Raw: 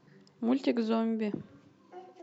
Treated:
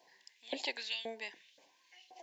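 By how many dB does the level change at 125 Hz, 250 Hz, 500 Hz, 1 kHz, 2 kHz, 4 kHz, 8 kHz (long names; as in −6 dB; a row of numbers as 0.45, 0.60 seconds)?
below −25 dB, −23.5 dB, −12.5 dB, −9.5 dB, +4.0 dB, +7.5 dB, can't be measured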